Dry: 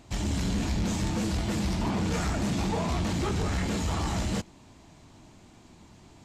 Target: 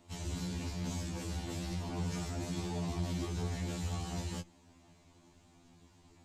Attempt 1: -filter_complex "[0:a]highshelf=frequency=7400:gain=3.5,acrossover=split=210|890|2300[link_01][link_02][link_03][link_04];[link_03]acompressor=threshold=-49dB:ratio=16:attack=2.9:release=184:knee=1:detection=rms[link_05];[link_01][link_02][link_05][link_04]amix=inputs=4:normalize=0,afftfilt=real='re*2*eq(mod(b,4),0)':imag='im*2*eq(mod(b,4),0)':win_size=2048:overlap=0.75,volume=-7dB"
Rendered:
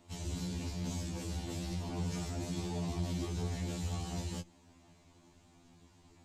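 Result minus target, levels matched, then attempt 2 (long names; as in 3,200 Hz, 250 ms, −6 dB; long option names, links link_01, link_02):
downward compressor: peak gain reduction +6 dB
-filter_complex "[0:a]highshelf=frequency=7400:gain=3.5,acrossover=split=210|890|2300[link_01][link_02][link_03][link_04];[link_03]acompressor=threshold=-42.5dB:ratio=16:attack=2.9:release=184:knee=1:detection=rms[link_05];[link_01][link_02][link_05][link_04]amix=inputs=4:normalize=0,afftfilt=real='re*2*eq(mod(b,4),0)':imag='im*2*eq(mod(b,4),0)':win_size=2048:overlap=0.75,volume=-7dB"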